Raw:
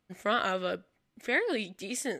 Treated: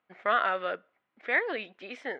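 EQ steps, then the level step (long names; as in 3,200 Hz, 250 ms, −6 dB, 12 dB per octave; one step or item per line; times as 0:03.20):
resonant band-pass 870 Hz, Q 0.63
high-frequency loss of the air 320 metres
tilt shelving filter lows −7 dB, about 780 Hz
+4.0 dB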